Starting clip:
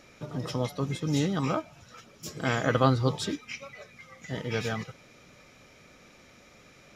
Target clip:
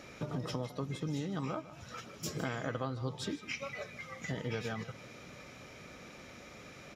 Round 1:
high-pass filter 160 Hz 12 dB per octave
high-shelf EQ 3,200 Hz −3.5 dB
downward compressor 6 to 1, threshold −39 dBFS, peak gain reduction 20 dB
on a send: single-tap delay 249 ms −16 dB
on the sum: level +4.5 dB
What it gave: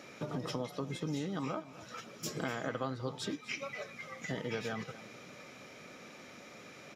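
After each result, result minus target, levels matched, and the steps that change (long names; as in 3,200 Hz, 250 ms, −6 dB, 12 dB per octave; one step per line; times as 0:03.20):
echo 94 ms late; 125 Hz band −3.5 dB
change: single-tap delay 155 ms −16 dB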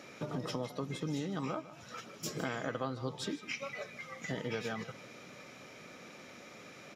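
125 Hz band −3.5 dB
change: high-pass filter 43 Hz 12 dB per octave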